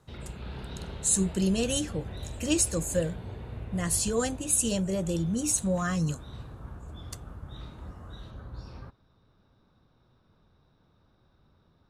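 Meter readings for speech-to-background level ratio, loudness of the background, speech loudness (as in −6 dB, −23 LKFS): 14.0 dB, −42.0 LKFS, −28.0 LKFS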